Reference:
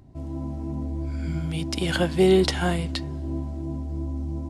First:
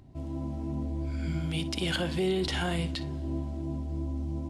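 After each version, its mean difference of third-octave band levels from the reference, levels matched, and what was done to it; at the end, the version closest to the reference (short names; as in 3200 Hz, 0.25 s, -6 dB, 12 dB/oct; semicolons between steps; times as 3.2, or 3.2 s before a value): 4.0 dB: limiter -18.5 dBFS, peak gain reduction 11 dB; bell 3100 Hz +4.5 dB 1 oct; on a send: flutter echo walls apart 10.2 m, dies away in 0.22 s; on the sum: gain -2.5 dB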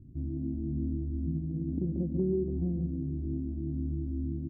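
11.0 dB: inverse Chebyshev low-pass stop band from 1900 Hz, stop band 80 dB; compressor 4:1, threshold -27 dBFS, peak gain reduction 8 dB; echo 0.141 s -7.5 dB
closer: first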